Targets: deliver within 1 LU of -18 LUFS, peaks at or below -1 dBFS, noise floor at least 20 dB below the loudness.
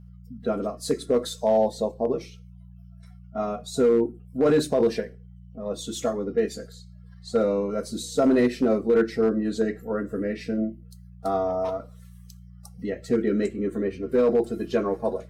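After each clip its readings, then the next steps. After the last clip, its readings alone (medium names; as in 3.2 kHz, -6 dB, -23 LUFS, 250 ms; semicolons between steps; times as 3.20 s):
clipped samples 0.4%; clipping level -13.5 dBFS; hum 60 Hz; highest harmonic 180 Hz; hum level -43 dBFS; loudness -25.5 LUFS; peak level -13.5 dBFS; loudness target -18.0 LUFS
-> clip repair -13.5 dBFS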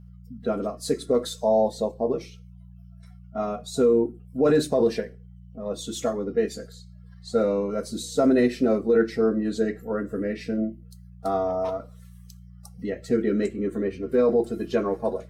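clipped samples 0.0%; hum 60 Hz; highest harmonic 180 Hz; hum level -43 dBFS
-> de-hum 60 Hz, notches 3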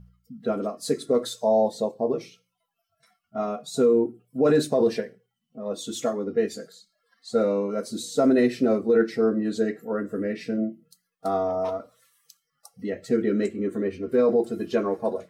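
hum not found; loudness -25.0 LUFS; peak level -10.5 dBFS; loudness target -18.0 LUFS
-> trim +7 dB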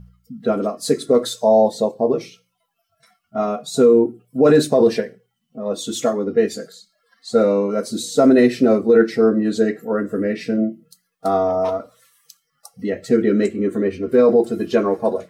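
loudness -18.0 LUFS; peak level -3.5 dBFS; noise floor -73 dBFS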